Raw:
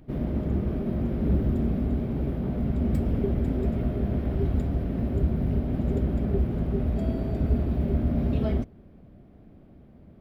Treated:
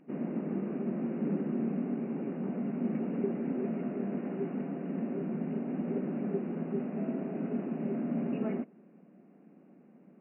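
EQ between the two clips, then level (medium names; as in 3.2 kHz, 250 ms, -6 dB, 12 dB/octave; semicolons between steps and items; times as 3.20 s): brick-wall FIR band-pass 160–2900 Hz; band-stop 630 Hz, Q 13; -3.5 dB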